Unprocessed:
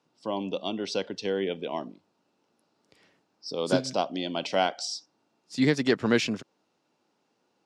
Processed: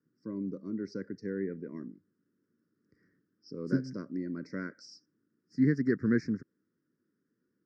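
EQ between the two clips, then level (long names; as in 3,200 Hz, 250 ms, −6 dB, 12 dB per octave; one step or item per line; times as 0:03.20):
Butterworth band-reject 770 Hz, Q 0.56
elliptic band-stop filter 1,800–5,200 Hz, stop band 60 dB
high-frequency loss of the air 320 metres
0.0 dB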